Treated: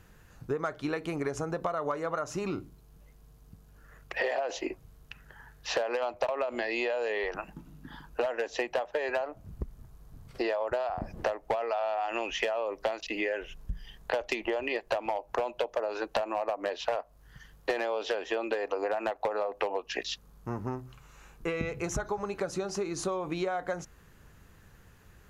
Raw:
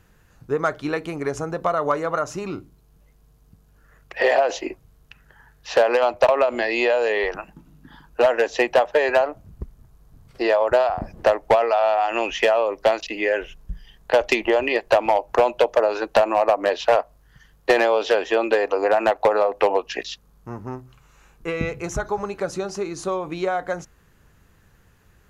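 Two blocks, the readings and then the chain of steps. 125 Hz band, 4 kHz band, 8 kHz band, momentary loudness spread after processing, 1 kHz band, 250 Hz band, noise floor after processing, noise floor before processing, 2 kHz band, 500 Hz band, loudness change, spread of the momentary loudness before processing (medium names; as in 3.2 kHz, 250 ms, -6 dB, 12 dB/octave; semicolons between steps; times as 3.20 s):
-5.0 dB, -8.0 dB, no reading, 11 LU, -11.5 dB, -8.0 dB, -58 dBFS, -56 dBFS, -10.0 dB, -12.0 dB, -12.0 dB, 16 LU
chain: compression 5:1, threshold -29 dBFS, peak gain reduction 15.5 dB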